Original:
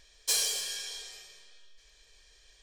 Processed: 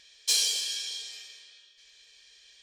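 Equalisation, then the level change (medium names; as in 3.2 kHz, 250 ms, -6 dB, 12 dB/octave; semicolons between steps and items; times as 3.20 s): frequency weighting D; dynamic bell 1.7 kHz, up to -5 dB, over -42 dBFS, Q 1.1; -4.5 dB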